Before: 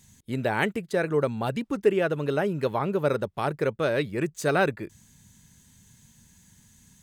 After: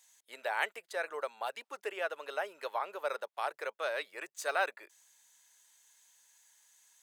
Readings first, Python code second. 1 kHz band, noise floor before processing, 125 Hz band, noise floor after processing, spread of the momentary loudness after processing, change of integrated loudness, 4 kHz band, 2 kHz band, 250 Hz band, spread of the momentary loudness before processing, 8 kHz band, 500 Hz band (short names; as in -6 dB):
-6.0 dB, -59 dBFS, under -40 dB, -84 dBFS, 8 LU, -10.5 dB, -5.5 dB, -5.5 dB, -29.5 dB, 6 LU, -5.5 dB, -13.0 dB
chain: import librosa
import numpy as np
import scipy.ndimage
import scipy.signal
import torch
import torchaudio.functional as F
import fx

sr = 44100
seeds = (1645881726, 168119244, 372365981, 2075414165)

y = scipy.signal.sosfilt(scipy.signal.butter(4, 620.0, 'highpass', fs=sr, output='sos'), x)
y = F.gain(torch.from_numpy(y), -5.5).numpy()